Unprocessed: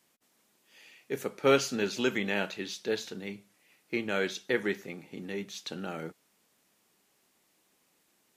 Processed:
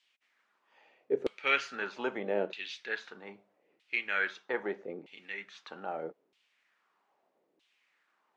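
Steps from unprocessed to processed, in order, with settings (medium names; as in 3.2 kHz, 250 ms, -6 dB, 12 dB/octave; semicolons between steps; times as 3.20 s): distance through air 60 m; LFO band-pass saw down 0.79 Hz 370–3400 Hz; trim +7 dB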